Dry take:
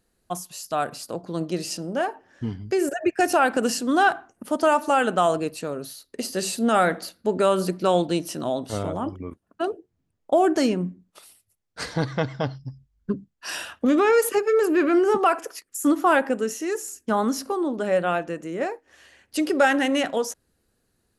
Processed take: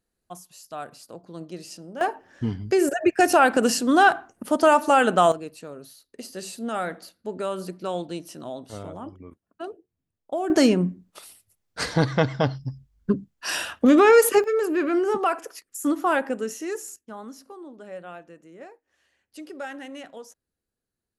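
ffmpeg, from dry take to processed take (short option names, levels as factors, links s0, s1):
-af "asetnsamples=n=441:p=0,asendcmd='2.01 volume volume 2.5dB;5.32 volume volume -9dB;10.5 volume volume 4dB;14.44 volume volume -3.5dB;16.96 volume volume -16.5dB',volume=0.316"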